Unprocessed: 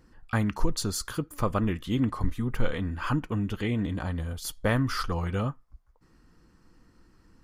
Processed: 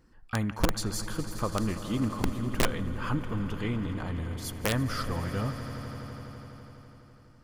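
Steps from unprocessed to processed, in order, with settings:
echo that builds up and dies away 83 ms, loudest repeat 5, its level −15.5 dB
wrap-around overflow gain 13.5 dB
level −3.5 dB

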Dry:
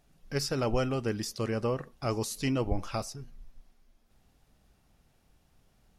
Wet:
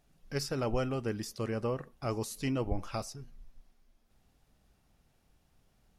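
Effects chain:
0:00.43–0:02.93: parametric band 4,900 Hz −3.5 dB 1.5 octaves
level −3 dB

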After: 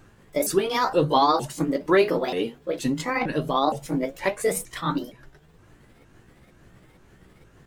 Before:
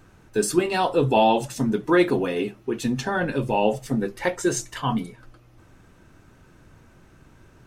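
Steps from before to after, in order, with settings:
pitch shifter swept by a sawtooth +6.5 semitones, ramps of 465 ms

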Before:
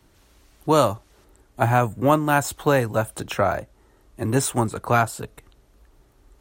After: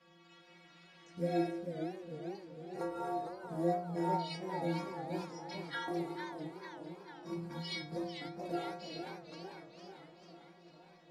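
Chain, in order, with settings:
high-pass filter 120 Hz 6 dB per octave
high-shelf EQ 3,600 Hz +6 dB
downward compressor 2.5 to 1, threshold −40 dBFS, peak gain reduction 18.5 dB
three-way crossover with the lows and the highs turned down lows −20 dB, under 290 Hz, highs −21 dB, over 7,000 Hz
floating-point word with a short mantissa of 4 bits
stiff-string resonator 290 Hz, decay 0.37 s, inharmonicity 0.008
delay with a low-pass on its return 245 ms, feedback 68%, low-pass 1,900 Hz, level −14 dB
wrong playback speed 78 rpm record played at 45 rpm
feedback echo with a swinging delay time 450 ms, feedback 60%, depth 185 cents, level −8 dB
level +14 dB

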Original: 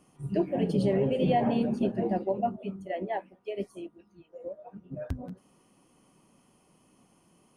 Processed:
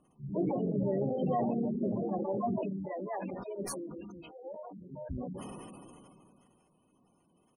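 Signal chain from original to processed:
pitch-shifted copies added −3 semitones −15 dB, +7 semitones −12 dB
gate on every frequency bin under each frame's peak −20 dB strong
level that may fall only so fast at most 22 dB per second
level −6.5 dB

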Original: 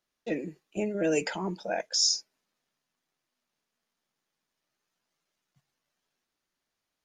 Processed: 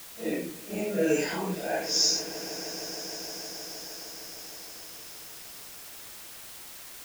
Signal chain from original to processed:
random phases in long frames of 200 ms
in parallel at −8 dB: bit-depth reduction 6 bits, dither triangular
on the sum: echo that builds up and dies away 155 ms, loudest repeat 5, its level −17.5 dB
level −1.5 dB

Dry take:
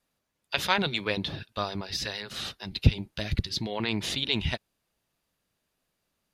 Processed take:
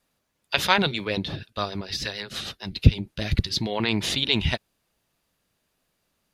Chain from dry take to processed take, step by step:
0:00.91–0:03.22: rotating-speaker cabinet horn 6.7 Hz
level +5 dB

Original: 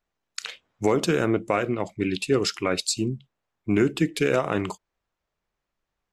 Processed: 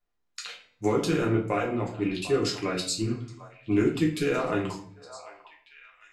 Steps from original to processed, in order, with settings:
hum removal 221.3 Hz, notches 37
on a send: echo through a band-pass that steps 748 ms, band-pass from 870 Hz, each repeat 1.4 octaves, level −11.5 dB
on the sum: rectangular room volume 48 cubic metres, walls mixed, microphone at 0.85 metres
level −8 dB

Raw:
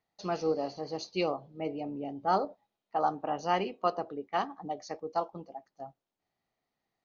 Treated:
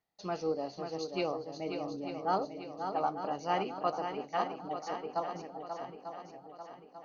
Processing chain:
feedback echo with a long and a short gap by turns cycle 893 ms, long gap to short 1.5 to 1, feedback 46%, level −7 dB
level −3.5 dB

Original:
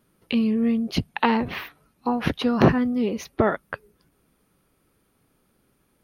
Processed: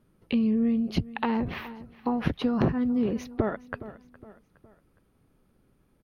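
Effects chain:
on a send: repeating echo 414 ms, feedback 43%, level −21 dB
on the sum: downward compressor 4 to 1, threshold −22 dBFS, peak gain reduction 10 dB
spectral tilt −2 dB per octave
level −3.5 dB

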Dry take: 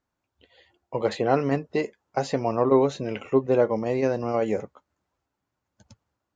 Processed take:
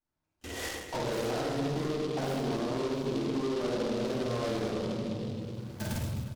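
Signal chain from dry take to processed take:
0:01.67–0:03.92: parametric band 270 Hz +10 dB 2.4 octaves
rectangular room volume 410 cubic metres, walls mixed, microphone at 8.2 metres
automatic gain control gain up to 14 dB
noise gate with hold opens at −36 dBFS
downward compressor 5 to 1, threshold −25 dBFS, peak gain reduction 16.5 dB
soft clipping −28.5 dBFS, distortion −10 dB
reverse bouncing-ball delay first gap 50 ms, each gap 1.6×, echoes 5
short delay modulated by noise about 3,300 Hz, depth 0.056 ms
level −2 dB

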